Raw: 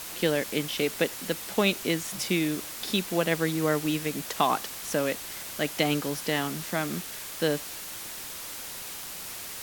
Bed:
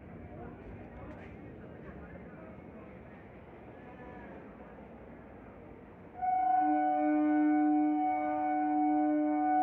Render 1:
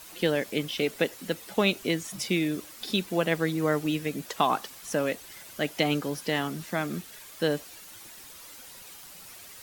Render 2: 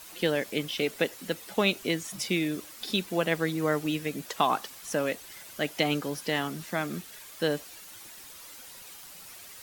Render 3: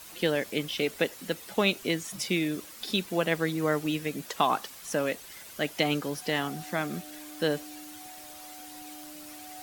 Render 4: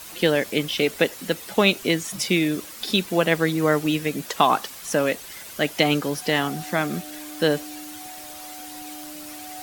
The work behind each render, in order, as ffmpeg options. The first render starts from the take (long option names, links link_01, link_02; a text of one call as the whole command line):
ffmpeg -i in.wav -af "afftdn=noise_reduction=10:noise_floor=-39" out.wav
ffmpeg -i in.wav -af "lowshelf=frequency=480:gain=-2.5" out.wav
ffmpeg -i in.wav -i bed.wav -filter_complex "[1:a]volume=-19dB[link_01];[0:a][link_01]amix=inputs=2:normalize=0" out.wav
ffmpeg -i in.wav -af "volume=7dB" out.wav